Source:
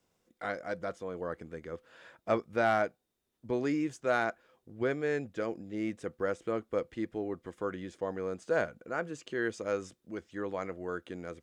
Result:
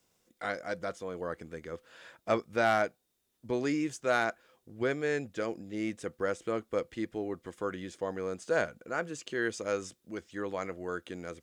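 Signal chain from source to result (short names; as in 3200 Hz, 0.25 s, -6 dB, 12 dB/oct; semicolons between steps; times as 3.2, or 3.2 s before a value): high shelf 2800 Hz +8 dB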